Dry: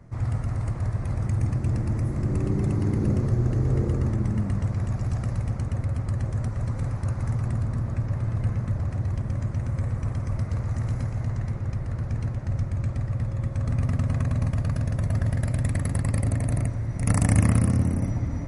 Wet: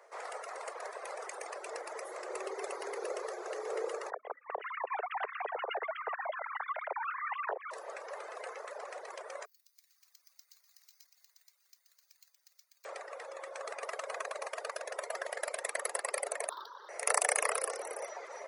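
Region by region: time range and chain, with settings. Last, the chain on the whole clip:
4.10–7.71 s: formants replaced by sine waves + compression 12:1, threshold -32 dBFS
9.45–12.85 s: ladder band-pass 5.4 kHz, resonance 55% + treble shelf 5.1 kHz -6 dB + careless resampling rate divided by 4×, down filtered, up zero stuff
16.49–16.89 s: median filter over 25 samples + FFT filter 250 Hz 0 dB, 700 Hz -14 dB, 980 Hz +8 dB, 1.6 kHz +2 dB, 2.4 kHz -26 dB, 3.6 kHz +9 dB, 5.6 kHz 0 dB, 8.2 kHz -24 dB, 12 kHz -7 dB
whole clip: reverb removal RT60 0.74 s; steep high-pass 420 Hz 72 dB/octave; trim +3 dB

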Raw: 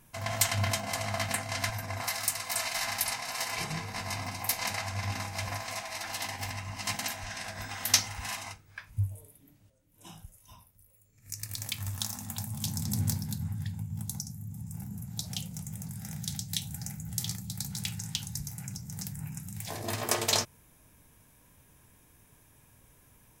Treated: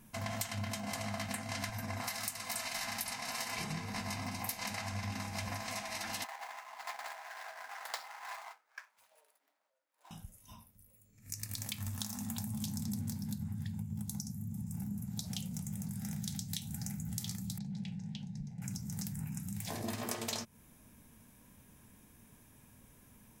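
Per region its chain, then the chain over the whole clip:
6.24–10.11 s: median filter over 15 samples + high-pass 700 Hz 24 dB/octave
17.58–18.62 s: tape spacing loss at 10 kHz 34 dB + static phaser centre 320 Hz, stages 6
whole clip: peaking EQ 220 Hz +11 dB 0.48 oct; compression 6:1, threshold -34 dBFS; trim -1.5 dB

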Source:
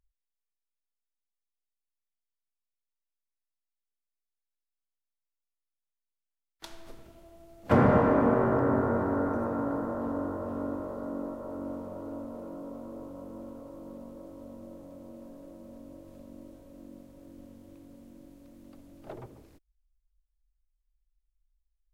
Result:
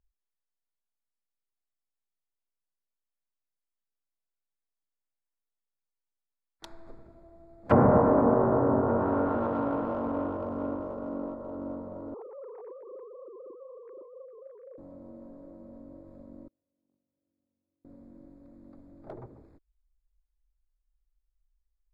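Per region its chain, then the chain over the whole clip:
12.14–14.78 s: formants replaced by sine waves + high-pass 440 Hz 6 dB/octave
16.48–17.85 s: gate -43 dBFS, range -34 dB + high-pass 74 Hz 24 dB/octave
whole clip: local Wiener filter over 15 samples; low-pass that closes with the level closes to 970 Hz, closed at -22.5 dBFS; dynamic bell 970 Hz, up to +5 dB, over -40 dBFS, Q 0.71

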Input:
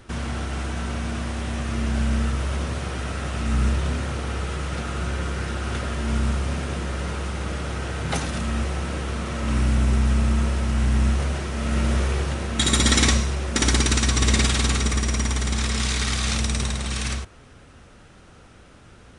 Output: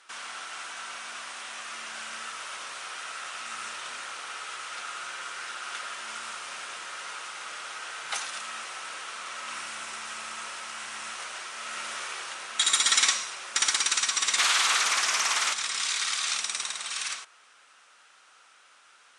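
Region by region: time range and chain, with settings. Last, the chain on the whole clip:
14.38–15.53 s: treble shelf 5.8 kHz +11 dB + overdrive pedal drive 23 dB, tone 1.3 kHz, clips at -4 dBFS + loudspeaker Doppler distortion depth 0.42 ms
whole clip: Chebyshev band-pass 1.3–9.3 kHz, order 2; peaking EQ 1.8 kHz -3.5 dB 0.61 oct

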